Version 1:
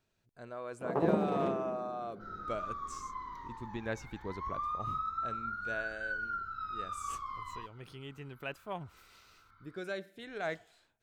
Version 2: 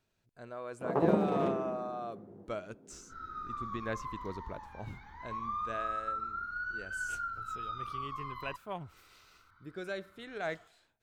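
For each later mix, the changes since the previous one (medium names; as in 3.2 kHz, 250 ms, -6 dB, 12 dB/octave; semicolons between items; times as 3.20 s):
first sound: send +6.5 dB; second sound: entry +0.90 s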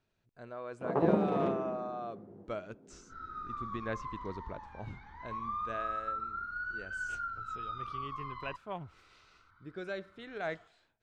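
master: add distance through air 87 m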